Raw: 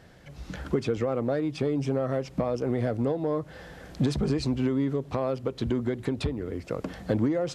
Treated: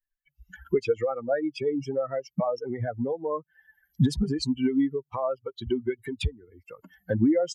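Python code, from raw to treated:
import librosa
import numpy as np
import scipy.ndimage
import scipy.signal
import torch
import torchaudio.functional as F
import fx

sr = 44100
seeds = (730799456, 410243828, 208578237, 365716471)

y = fx.bin_expand(x, sr, power=3.0)
y = y * librosa.db_to_amplitude(8.0)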